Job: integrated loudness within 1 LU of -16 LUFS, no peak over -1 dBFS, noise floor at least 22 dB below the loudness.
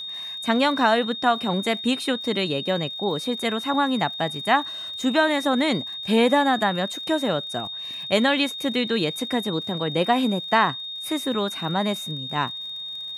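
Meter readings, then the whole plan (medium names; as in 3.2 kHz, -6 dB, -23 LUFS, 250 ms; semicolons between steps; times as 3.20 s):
tick rate 48 per s; steady tone 3.7 kHz; tone level -31 dBFS; loudness -23.5 LUFS; peak level -6.5 dBFS; loudness target -16.0 LUFS
-> de-click; band-stop 3.7 kHz, Q 30; trim +7.5 dB; peak limiter -1 dBFS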